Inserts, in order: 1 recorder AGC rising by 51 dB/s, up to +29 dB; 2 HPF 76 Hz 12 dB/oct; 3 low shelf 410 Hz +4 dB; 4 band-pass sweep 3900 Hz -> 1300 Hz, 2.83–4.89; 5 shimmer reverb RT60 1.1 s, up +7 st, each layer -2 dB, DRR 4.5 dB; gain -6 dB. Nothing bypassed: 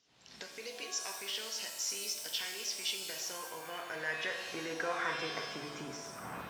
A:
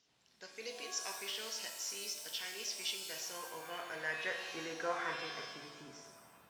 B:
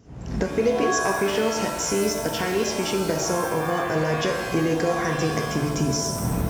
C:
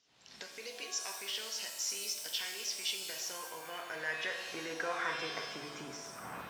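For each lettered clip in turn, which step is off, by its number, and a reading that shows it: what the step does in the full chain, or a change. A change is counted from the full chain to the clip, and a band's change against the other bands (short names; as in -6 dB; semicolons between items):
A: 1, crest factor change +1.5 dB; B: 4, 125 Hz band +15.0 dB; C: 3, 125 Hz band -3.0 dB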